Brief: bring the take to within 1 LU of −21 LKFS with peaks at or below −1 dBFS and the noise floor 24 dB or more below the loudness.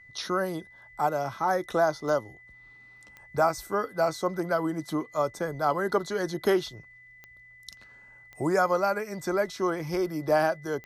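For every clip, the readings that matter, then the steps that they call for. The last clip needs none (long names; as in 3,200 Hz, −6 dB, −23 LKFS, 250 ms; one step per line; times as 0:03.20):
number of clicks 5; interfering tone 2,000 Hz; level of the tone −50 dBFS; integrated loudness −28.0 LKFS; sample peak −13.0 dBFS; target loudness −21.0 LKFS
→ click removal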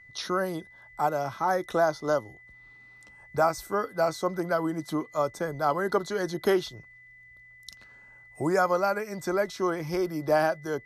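number of clicks 0; interfering tone 2,000 Hz; level of the tone −50 dBFS
→ notch filter 2,000 Hz, Q 30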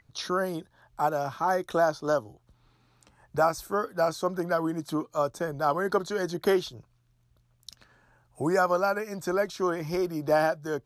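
interfering tone none found; integrated loudness −28.0 LKFS; sample peak −13.0 dBFS; target loudness −21.0 LKFS
→ level +7 dB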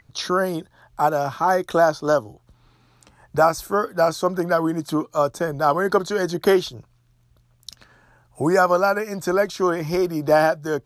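integrated loudness −21.0 LKFS; sample peak −6.0 dBFS; background noise floor −60 dBFS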